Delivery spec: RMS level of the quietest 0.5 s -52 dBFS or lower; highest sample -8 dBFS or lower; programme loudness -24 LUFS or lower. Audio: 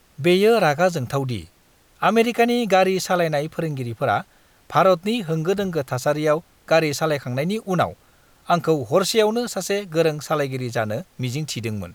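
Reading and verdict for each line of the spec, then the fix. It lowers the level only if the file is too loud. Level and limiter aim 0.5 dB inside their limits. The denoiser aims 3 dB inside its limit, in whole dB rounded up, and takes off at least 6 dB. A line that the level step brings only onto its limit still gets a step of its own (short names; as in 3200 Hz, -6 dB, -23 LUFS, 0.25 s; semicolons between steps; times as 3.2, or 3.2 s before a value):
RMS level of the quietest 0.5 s -56 dBFS: OK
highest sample -5.5 dBFS: fail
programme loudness -21.0 LUFS: fail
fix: gain -3.5 dB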